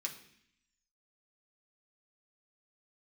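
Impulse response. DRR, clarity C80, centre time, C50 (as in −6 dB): −0.5 dB, 13.5 dB, 15 ms, 10.5 dB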